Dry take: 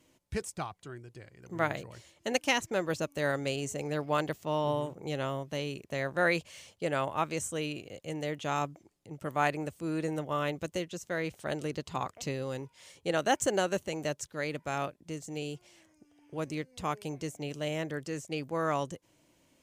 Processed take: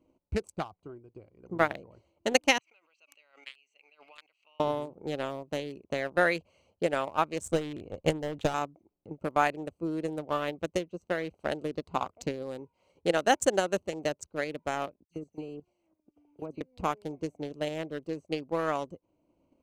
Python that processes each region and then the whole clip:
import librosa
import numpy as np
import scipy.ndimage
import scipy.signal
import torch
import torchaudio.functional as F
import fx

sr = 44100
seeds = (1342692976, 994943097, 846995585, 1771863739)

y = fx.chain(x, sr, fx.ladder_bandpass(hz=2900.0, resonance_pct=60),
    fx.pre_swell(db_per_s=44.0), at=(2.58, 4.6))
y = fx.chain(y, sr, fx.low_shelf(hz=120.0, db=11.5),
    fx.clip_hard(threshold_db=-30.0),
    fx.transient(attack_db=12, sustain_db=6), at=(7.46, 8.54))
y = fx.chain(y, sr, fx.high_shelf(hz=7300.0, db=10.0),
    fx.level_steps(step_db=13),
    fx.dispersion(late='lows', ms=64.0, hz=2900.0), at=(15.04, 16.61))
y = fx.wiener(y, sr, points=25)
y = fx.peak_eq(y, sr, hz=130.0, db=-9.0, octaves=0.54)
y = fx.transient(y, sr, attack_db=7, sustain_db=-3)